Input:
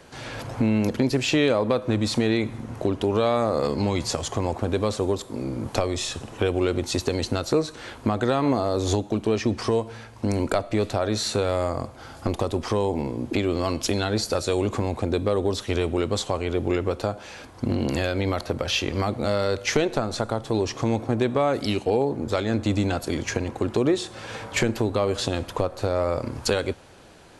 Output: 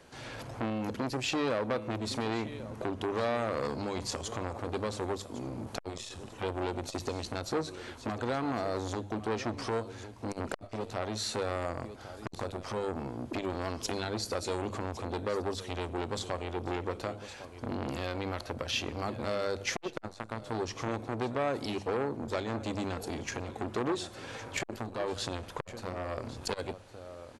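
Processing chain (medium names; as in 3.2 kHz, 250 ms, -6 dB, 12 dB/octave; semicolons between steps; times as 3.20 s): hum notches 50/100/150/200 Hz; on a send: delay 1108 ms -15.5 dB; on the sum: transformer saturation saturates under 1.2 kHz; trim -7 dB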